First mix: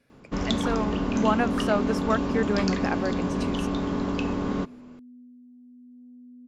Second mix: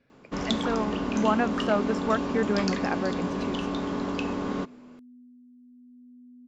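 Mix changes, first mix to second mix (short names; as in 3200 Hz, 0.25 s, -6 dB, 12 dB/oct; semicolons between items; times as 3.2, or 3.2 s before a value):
speech: add air absorption 140 m; first sound: add low shelf 150 Hz -10.5 dB; second sound: add Gaussian blur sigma 23 samples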